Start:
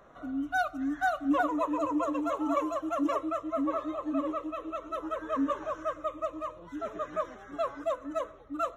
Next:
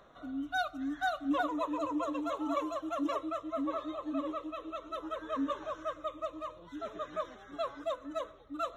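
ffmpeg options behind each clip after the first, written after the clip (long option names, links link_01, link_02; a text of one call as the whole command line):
ffmpeg -i in.wav -af "equalizer=frequency=3700:width=2.5:gain=10.5,areverse,acompressor=mode=upward:threshold=-43dB:ratio=2.5,areverse,volume=-4.5dB" out.wav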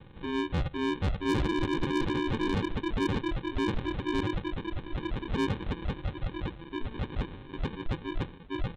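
ffmpeg -i in.wav -af "aresample=8000,acrusher=samples=12:mix=1:aa=0.000001,aresample=44100,asoftclip=type=tanh:threshold=-31dB,volume=8dB" out.wav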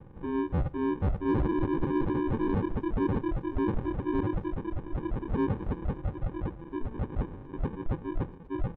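ffmpeg -i in.wav -filter_complex "[0:a]lowpass=1100,asplit=2[link_01][link_02];[link_02]adelay=240,highpass=300,lowpass=3400,asoftclip=type=hard:threshold=-31.5dB,volume=-23dB[link_03];[link_01][link_03]amix=inputs=2:normalize=0,volume=1.5dB" out.wav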